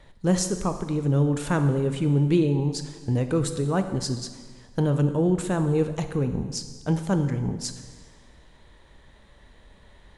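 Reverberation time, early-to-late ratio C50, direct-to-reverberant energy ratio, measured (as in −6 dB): 1.5 s, 9.5 dB, 8.0 dB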